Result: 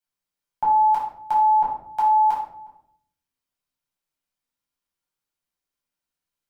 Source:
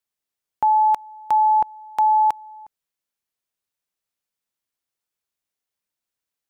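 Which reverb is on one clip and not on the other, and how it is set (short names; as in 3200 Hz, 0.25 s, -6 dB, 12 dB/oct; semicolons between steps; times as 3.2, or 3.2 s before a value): shoebox room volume 880 m³, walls furnished, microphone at 7.9 m; gain -9.5 dB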